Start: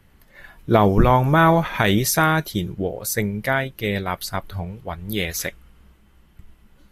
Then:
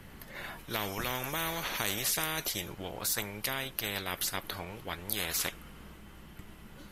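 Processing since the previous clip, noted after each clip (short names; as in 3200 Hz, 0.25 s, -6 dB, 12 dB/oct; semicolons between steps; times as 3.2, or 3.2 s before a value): spectral compressor 4:1; gain -8 dB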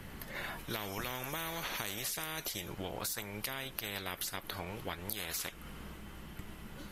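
compressor, threshold -38 dBFS, peak gain reduction 11 dB; gain +2.5 dB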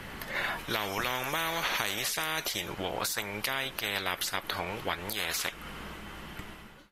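ending faded out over 0.52 s; overdrive pedal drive 7 dB, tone 4000 Hz, clips at -14.5 dBFS; gain +7 dB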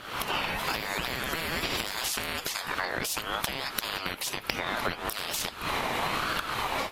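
recorder AGC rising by 71 dB/s; ring modulator with a swept carrier 1100 Hz, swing 25%, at 1.1 Hz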